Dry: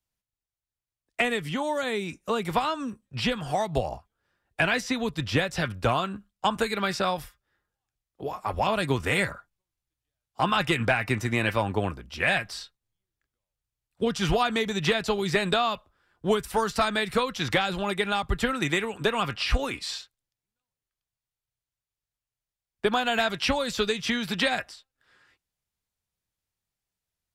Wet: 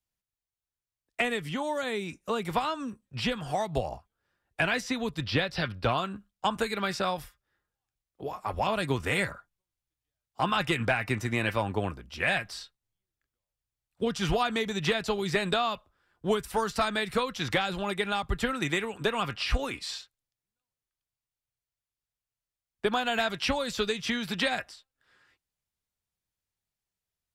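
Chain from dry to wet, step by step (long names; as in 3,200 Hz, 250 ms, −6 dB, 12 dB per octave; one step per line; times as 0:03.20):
0:05.23–0:05.98: high shelf with overshoot 5,700 Hz −6.5 dB, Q 3
level −3 dB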